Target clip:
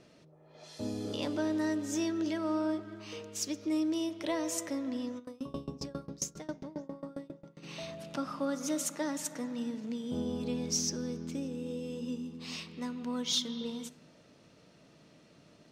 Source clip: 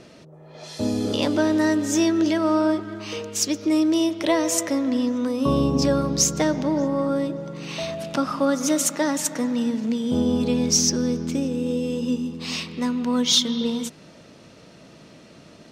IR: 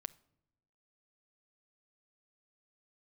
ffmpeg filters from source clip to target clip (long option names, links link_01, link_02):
-filter_complex "[1:a]atrim=start_sample=2205[link_01];[0:a][link_01]afir=irnorm=-1:irlink=0,asplit=3[link_02][link_03][link_04];[link_02]afade=type=out:start_time=5.18:duration=0.02[link_05];[link_03]aeval=exprs='val(0)*pow(10,-25*if(lt(mod(7.4*n/s,1),2*abs(7.4)/1000),1-mod(7.4*n/s,1)/(2*abs(7.4)/1000),(mod(7.4*n/s,1)-2*abs(7.4)/1000)/(1-2*abs(7.4)/1000))/20)':channel_layout=same,afade=type=in:start_time=5.18:duration=0.02,afade=type=out:start_time=7.62:duration=0.02[link_06];[link_04]afade=type=in:start_time=7.62:duration=0.02[link_07];[link_05][link_06][link_07]amix=inputs=3:normalize=0,volume=-9dB"